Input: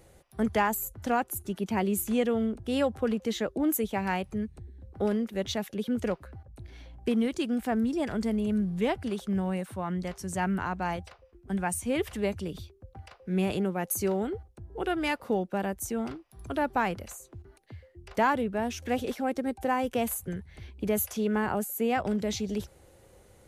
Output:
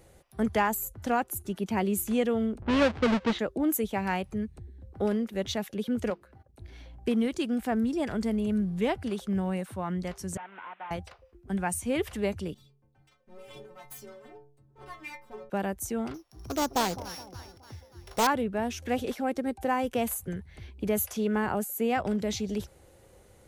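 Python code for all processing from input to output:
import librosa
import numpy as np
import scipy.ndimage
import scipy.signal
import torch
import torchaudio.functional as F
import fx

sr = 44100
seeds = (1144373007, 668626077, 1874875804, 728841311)

y = fx.chain(x, sr, fx.halfwave_hold(),
    fx.lowpass(hz=3600.0, slope=12),
    fx.env_lowpass(base_hz=1100.0, full_db=-21.0), at=(2.62, 3.39))
y = fx.chain(y, sr, fx.hum_notches(base_hz=50, count=9),
    fx.transient(attack_db=0, sustain_db=-7),
    fx.low_shelf(hz=180.0, db=-10.5), at=(6.1, 6.62))
y = fx.chain(y, sr, fx.delta_mod(bps=16000, step_db=-45.0),
    fx.highpass(hz=880.0, slope=12),
    fx.transient(attack_db=5, sustain_db=-6), at=(10.37, 10.91))
y = fx.chain(y, sr, fx.lower_of_two(delay_ms=7.6),
    fx.stiff_resonator(f0_hz=65.0, decay_s=0.79, stiffness=0.03), at=(12.54, 15.5))
y = fx.chain(y, sr, fx.sample_sort(block=8),
    fx.echo_split(split_hz=1000.0, low_ms=210, high_ms=289, feedback_pct=52, wet_db=-14.5),
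    fx.doppler_dist(depth_ms=0.39), at=(16.14, 18.27))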